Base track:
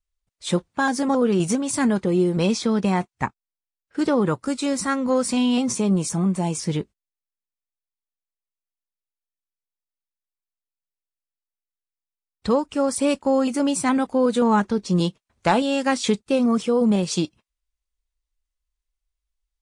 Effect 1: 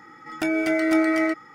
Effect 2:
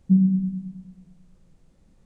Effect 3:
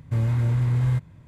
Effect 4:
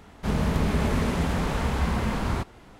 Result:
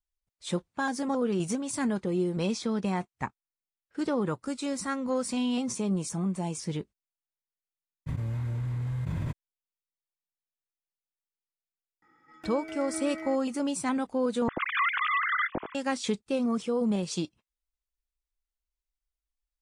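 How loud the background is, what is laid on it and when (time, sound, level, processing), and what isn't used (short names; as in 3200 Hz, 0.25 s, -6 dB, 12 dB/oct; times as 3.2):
base track -8.5 dB
8.06 add 3 -11.5 dB, fades 0.02 s + fast leveller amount 100%
12.02 add 1 -17.5 dB + high shelf 6100 Hz -5.5 dB
14.48 replace with 3 -6.5 dB + sine-wave speech
not used: 2, 4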